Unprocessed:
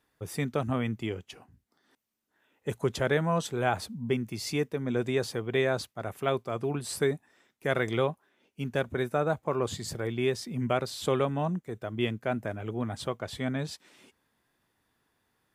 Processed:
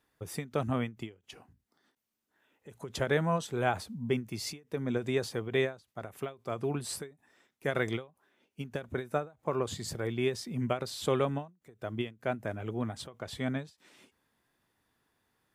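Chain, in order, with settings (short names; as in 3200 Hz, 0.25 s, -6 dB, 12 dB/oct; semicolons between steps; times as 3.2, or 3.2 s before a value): ending taper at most 210 dB/s; gain -1.5 dB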